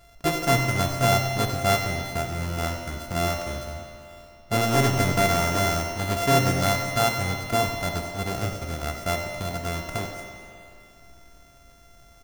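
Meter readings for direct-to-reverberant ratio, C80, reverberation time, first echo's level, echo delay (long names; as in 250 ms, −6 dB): 2.5 dB, 4.5 dB, 2.6 s, −11.0 dB, 95 ms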